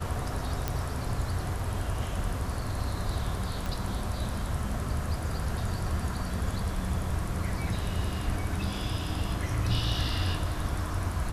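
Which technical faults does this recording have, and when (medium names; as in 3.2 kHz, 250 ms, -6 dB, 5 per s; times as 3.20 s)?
0.68 s: pop -14 dBFS
3.66 s: pop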